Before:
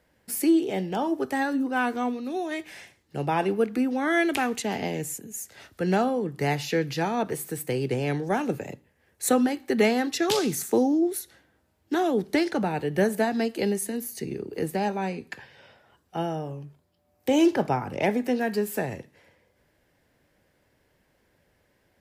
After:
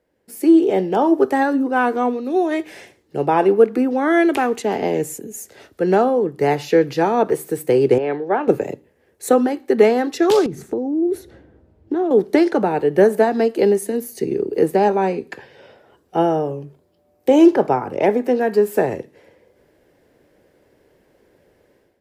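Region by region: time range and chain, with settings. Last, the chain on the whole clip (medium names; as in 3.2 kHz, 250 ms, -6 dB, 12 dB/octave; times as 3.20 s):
7.98–8.48 s: high-pass 650 Hz 6 dB/octave + distance through air 370 m
10.46–12.11 s: RIAA curve playback + compression 12:1, threshold -27 dBFS
whole clip: dynamic bell 1.1 kHz, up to +7 dB, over -40 dBFS, Q 0.91; level rider gain up to 13 dB; peaking EQ 410 Hz +12 dB 1.4 oct; trim -9 dB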